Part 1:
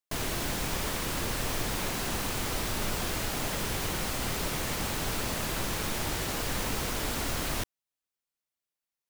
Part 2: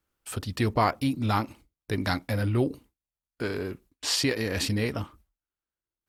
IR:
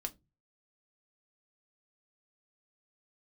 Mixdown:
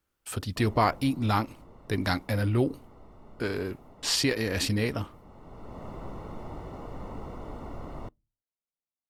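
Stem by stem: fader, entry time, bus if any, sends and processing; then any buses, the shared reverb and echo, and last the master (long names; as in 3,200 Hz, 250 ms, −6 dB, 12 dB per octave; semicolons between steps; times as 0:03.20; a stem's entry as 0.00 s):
−6.0 dB, 0.45 s, send −19 dB, Savitzky-Golay smoothing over 65 samples; automatic ducking −16 dB, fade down 1.55 s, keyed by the second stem
0.0 dB, 0.00 s, no send, no processing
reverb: on, RT60 0.20 s, pre-delay 5 ms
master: no processing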